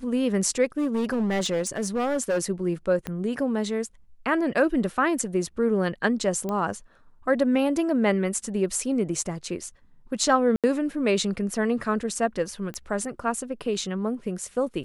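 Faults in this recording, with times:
0.78–2.43 clipped -21 dBFS
3.07 pop -16 dBFS
6.49 pop -17 dBFS
10.56–10.64 gap 77 ms
12.74 pop -21 dBFS

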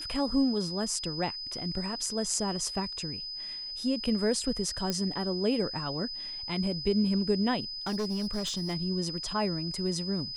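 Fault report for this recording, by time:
tone 5000 Hz -36 dBFS
4.9 pop -15 dBFS
7.86–8.75 clipped -27.5 dBFS

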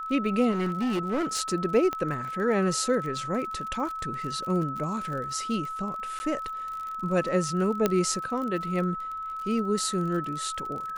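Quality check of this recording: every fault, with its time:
crackle 41/s -34 dBFS
tone 1300 Hz -32 dBFS
0.51–1.41 clipped -23.5 dBFS
1.93 pop -17 dBFS
6.19–6.2 gap 10 ms
7.86 pop -9 dBFS

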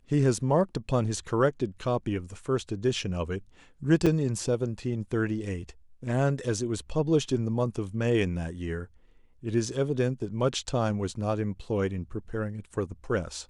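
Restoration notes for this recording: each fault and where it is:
4.06–4.07 gap 5.5 ms

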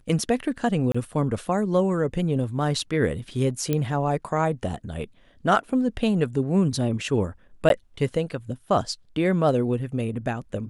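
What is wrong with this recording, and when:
0.92–0.94 gap 25 ms
3.73 pop -11 dBFS
7.69–7.7 gap 12 ms

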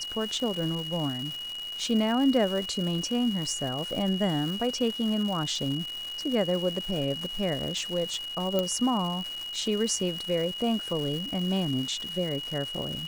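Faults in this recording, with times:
crackle 400/s -33 dBFS
tone 2900 Hz -34 dBFS
8.59 pop -13 dBFS

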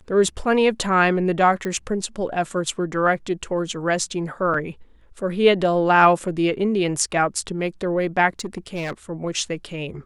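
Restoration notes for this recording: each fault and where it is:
1.65 pop -15 dBFS
4.54 gap 3.3 ms
8.39–8.93 clipped -22.5 dBFS

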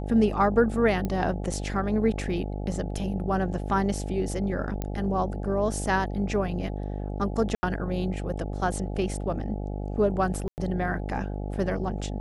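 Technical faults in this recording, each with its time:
buzz 50 Hz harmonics 17 -32 dBFS
1.05 pop -17 dBFS
4.82 pop -17 dBFS
7.55–7.63 gap 80 ms
10.48–10.58 gap 99 ms

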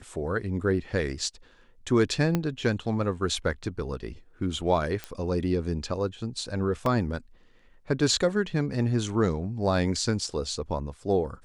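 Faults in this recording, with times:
2.35 pop -12 dBFS
5.04 pop -17 dBFS
6.86 gap 2.2 ms

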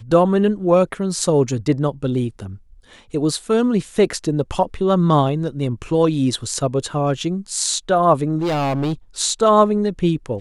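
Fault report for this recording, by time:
8.38–8.93 clipped -17.5 dBFS

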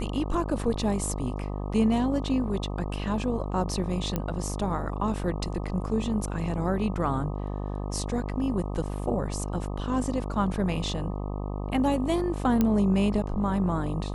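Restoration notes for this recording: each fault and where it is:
buzz 50 Hz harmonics 25 -32 dBFS
4.16 pop -14 dBFS
12.61 pop -11 dBFS

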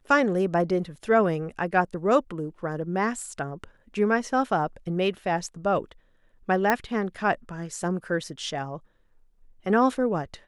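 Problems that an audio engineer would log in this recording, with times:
6.7 pop -8 dBFS

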